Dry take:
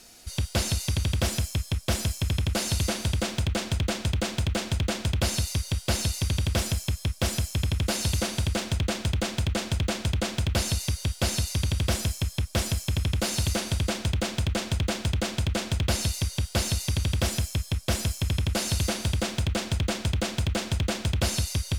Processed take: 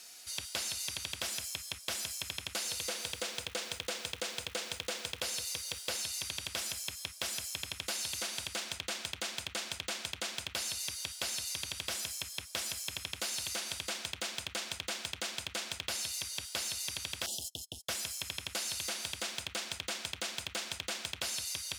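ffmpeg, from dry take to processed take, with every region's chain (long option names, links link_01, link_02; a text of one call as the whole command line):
ffmpeg -i in.wav -filter_complex "[0:a]asettb=1/sr,asplit=3[link_01][link_02][link_03];[link_01]atrim=end=2.644[link_04];[link_02]atrim=start=2.64:end=5.97,asetpts=PTS-STARTPTS,afade=type=in:duration=0.004:curve=qsin,afade=type=out:start_time=3.326:duration=0.004:curve=qsin,equalizer=frequency=480:width_type=o:width=0.24:gain=12,acrusher=bits=9:dc=4:mix=0:aa=0.000001[link_05];[link_03]atrim=start=5.966[link_06];[link_04][link_05]acrossfade=duration=0.004:curve1=hsin:curve2=qsin[link_07];[link_07][link_06]acrossfade=duration=0.004:curve1=qsin:curve2=hsin,asettb=1/sr,asplit=3[link_08][link_09][link_10];[link_08]atrim=end=17.264[link_11];[link_09]atrim=start=17.26:end=17.89,asetpts=PTS-STARTPTS,afade=type=in:duration=0.004:curve=qsin,afade=type=out:start_time=0.626:duration=0.004:curve=qsin,agate=range=-34dB:threshold=-35dB:ratio=16:release=100:detection=peak,asoftclip=type=hard:threshold=-23.5dB,asuperstop=centerf=1600:order=20:qfactor=0.82[link_12];[link_10]atrim=start=17.886[link_13];[link_11][link_12]acrossfade=duration=0.004:curve1=hsin:curve2=qsin[link_14];[link_14][link_13]acrossfade=duration=0.004:curve1=qsin:curve2=hsin,highpass=frequency=330:poles=1,tiltshelf=frequency=680:gain=-7,acompressor=threshold=-27dB:ratio=6,volume=-6.5dB" out.wav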